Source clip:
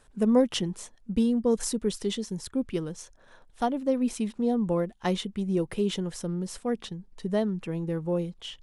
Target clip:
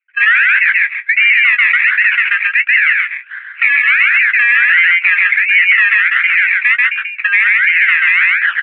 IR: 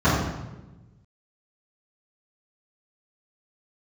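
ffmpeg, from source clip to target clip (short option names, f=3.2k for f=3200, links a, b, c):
-filter_complex "[0:a]agate=range=-44dB:threshold=-54dB:ratio=16:detection=peak,asplit=2[a][b];[b]acompressor=threshold=-36dB:ratio=6,volume=1dB[c];[a][c]amix=inputs=2:normalize=0,acrusher=samples=24:mix=1:aa=0.000001:lfo=1:lforange=14.4:lforate=1.4,asuperpass=centerf=2000:order=8:qfactor=1.9,asplit=2[d][e];[e]adelay=17,volume=-12.5dB[f];[d][f]amix=inputs=2:normalize=0,asplit=2[g][h];[h]aecho=0:1:135:0.668[i];[g][i]amix=inputs=2:normalize=0,alimiter=level_in=34.5dB:limit=-1dB:release=50:level=0:latency=1,volume=-1dB"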